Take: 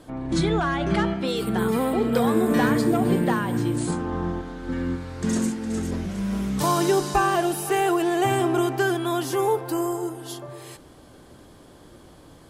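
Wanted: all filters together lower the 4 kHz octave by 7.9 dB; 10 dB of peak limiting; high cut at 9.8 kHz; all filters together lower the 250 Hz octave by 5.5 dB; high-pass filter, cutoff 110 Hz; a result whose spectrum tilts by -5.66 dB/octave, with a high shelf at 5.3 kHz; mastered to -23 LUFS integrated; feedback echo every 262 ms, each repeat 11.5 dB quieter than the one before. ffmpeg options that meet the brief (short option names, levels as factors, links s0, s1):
-af "highpass=110,lowpass=9800,equalizer=f=250:t=o:g=-7.5,equalizer=f=4000:t=o:g=-7.5,highshelf=f=5300:g=-7.5,alimiter=limit=0.0891:level=0:latency=1,aecho=1:1:262|524|786:0.266|0.0718|0.0194,volume=2.37"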